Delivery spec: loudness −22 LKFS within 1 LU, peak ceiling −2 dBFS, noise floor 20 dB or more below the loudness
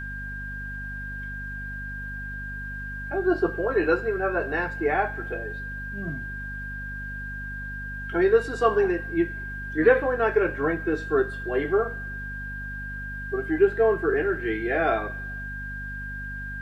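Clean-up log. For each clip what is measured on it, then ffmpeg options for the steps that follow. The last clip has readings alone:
mains hum 50 Hz; hum harmonics up to 250 Hz; level of the hum −35 dBFS; interfering tone 1,600 Hz; level of the tone −34 dBFS; integrated loudness −27.0 LKFS; sample peak −6.5 dBFS; target loudness −22.0 LKFS
→ -af "bandreject=frequency=50:width_type=h:width=6,bandreject=frequency=100:width_type=h:width=6,bandreject=frequency=150:width_type=h:width=6,bandreject=frequency=200:width_type=h:width=6,bandreject=frequency=250:width_type=h:width=6"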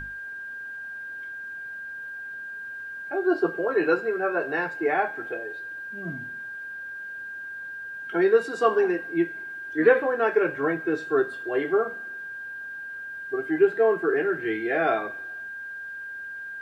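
mains hum none found; interfering tone 1,600 Hz; level of the tone −34 dBFS
→ -af "bandreject=frequency=1600:width=30"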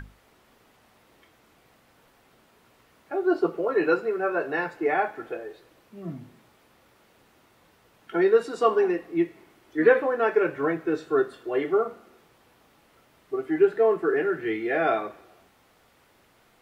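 interfering tone none found; integrated loudness −25.0 LKFS; sample peak −7.0 dBFS; target loudness −22.0 LKFS
→ -af "volume=3dB"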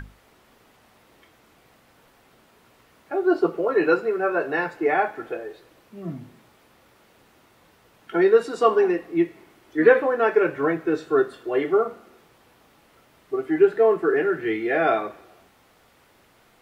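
integrated loudness −22.0 LKFS; sample peak −4.0 dBFS; background noise floor −58 dBFS

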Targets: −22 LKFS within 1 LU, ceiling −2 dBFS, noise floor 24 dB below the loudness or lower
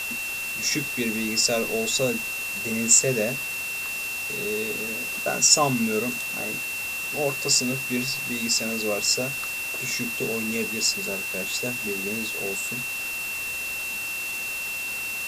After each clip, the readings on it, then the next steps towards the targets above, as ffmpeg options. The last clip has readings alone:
interfering tone 2,700 Hz; level of the tone −29 dBFS; background noise floor −31 dBFS; target noise floor −48 dBFS; integrated loudness −24.0 LKFS; sample peak −3.5 dBFS; target loudness −22.0 LKFS
→ -af "bandreject=frequency=2700:width=30"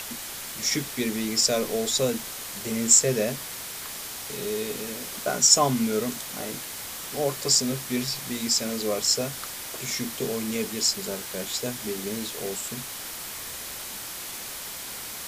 interfering tone none found; background noise floor −37 dBFS; target noise floor −50 dBFS
→ -af "afftdn=noise_reduction=13:noise_floor=-37"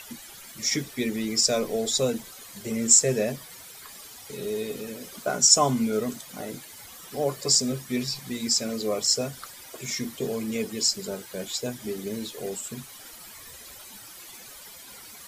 background noise floor −45 dBFS; target noise floor −49 dBFS
→ -af "afftdn=noise_reduction=6:noise_floor=-45"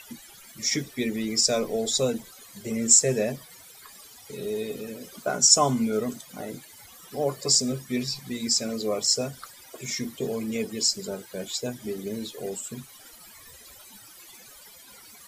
background noise floor −49 dBFS; integrated loudness −25.0 LKFS; sample peak −3.5 dBFS; target loudness −22.0 LKFS
→ -af "volume=3dB,alimiter=limit=-2dB:level=0:latency=1"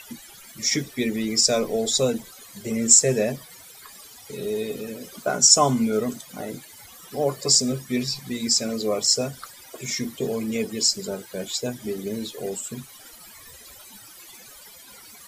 integrated loudness −22.0 LKFS; sample peak −2.0 dBFS; background noise floor −46 dBFS

